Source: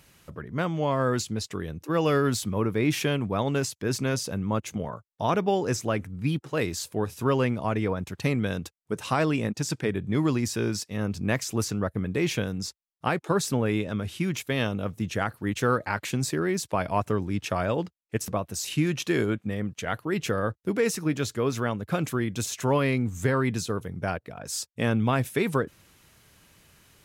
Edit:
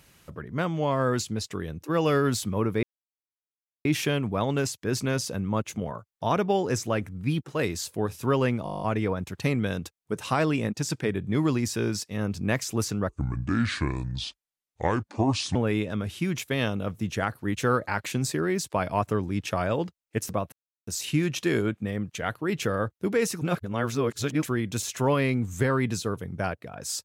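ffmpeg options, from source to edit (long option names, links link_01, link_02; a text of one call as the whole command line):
ffmpeg -i in.wav -filter_complex "[0:a]asplit=16[link_01][link_02][link_03][link_04][link_05][link_06][link_07][link_08][link_09][link_10][link_11][link_12][link_13][link_14][link_15][link_16];[link_01]atrim=end=2.83,asetpts=PTS-STARTPTS,afade=type=out:start_time=2.826:duration=0.004:curve=hsin,apad=pad_dur=1.02[link_17];[link_02]atrim=start=2.83:end=7.642,asetpts=PTS-STARTPTS,afade=type=in:duration=0.004:curve=hsin[link_18];[link_03]atrim=start=7.618:end=7.642[link_19];[link_04]atrim=start=7.618:end=7.642[link_20];[link_05]atrim=start=7.618:end=7.642[link_21];[link_06]atrim=start=7.618:end=7.642[link_22];[link_07]atrim=start=7.618:end=7.642[link_23];[link_08]atrim=start=7.618:end=7.642[link_24];[link_09]atrim=start=7.618:end=7.642[link_25];[link_10]atrim=start=7.618:end=7.642[link_26];[link_11]atrim=start=7.618:end=11.894[link_27];[link_12]atrim=start=11.89:end=13.54,asetpts=PTS-STARTPTS,asetrate=29547,aresample=44100,atrim=end_sample=108604,asetpts=PTS-STARTPTS[link_28];[link_13]atrim=start=13.536:end=18.51,asetpts=PTS-STARTPTS,afade=type=out:start_time=4.97:duration=0.004:curve=hsin,apad=pad_dur=0.35[link_29];[link_14]atrim=start=18.51:end=21.052,asetpts=PTS-STARTPTS,afade=type=in:duration=0.004:curve=hsin[link_30];[link_15]atrim=start=21.048:end=22.062,asetpts=PTS-STARTPTS,areverse[link_31];[link_16]atrim=start=22.058[link_32];[link_17][link_18]concat=n=2:v=0:a=1[link_33];[link_33][link_19]acrossfade=duration=0.004:curve1=hsin:curve2=hsin[link_34];[link_34][link_20]acrossfade=duration=0.004:curve1=hsin:curve2=hsin[link_35];[link_35][link_21]acrossfade=duration=0.004:curve1=hsin:curve2=hsin[link_36];[link_36][link_22]acrossfade=duration=0.004:curve1=hsin:curve2=hsin[link_37];[link_37][link_23]acrossfade=duration=0.004:curve1=hsin:curve2=hsin[link_38];[link_38][link_24]acrossfade=duration=0.004:curve1=hsin:curve2=hsin[link_39];[link_39][link_25]acrossfade=duration=0.004:curve1=hsin:curve2=hsin[link_40];[link_40][link_26]acrossfade=duration=0.004:curve1=hsin:curve2=hsin[link_41];[link_41][link_27]acrossfade=duration=0.004:curve1=hsin:curve2=hsin[link_42];[link_42][link_28]acrossfade=duration=0.004:curve1=hsin:curve2=hsin[link_43];[link_29][link_30]concat=n=2:v=0:a=1[link_44];[link_43][link_44]acrossfade=duration=0.004:curve1=hsin:curve2=hsin[link_45];[link_45][link_31]acrossfade=duration=0.004:curve1=hsin:curve2=hsin[link_46];[link_46][link_32]acrossfade=duration=0.004:curve1=hsin:curve2=hsin" out.wav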